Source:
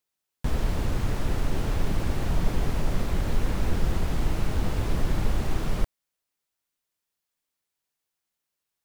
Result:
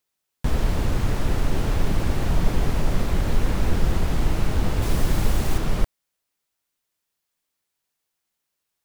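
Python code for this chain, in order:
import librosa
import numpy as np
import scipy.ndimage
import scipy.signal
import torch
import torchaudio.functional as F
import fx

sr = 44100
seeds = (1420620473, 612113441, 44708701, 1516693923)

y = fx.high_shelf(x, sr, hz=5400.0, db=8.5, at=(4.82, 5.58))
y = F.gain(torch.from_numpy(y), 4.0).numpy()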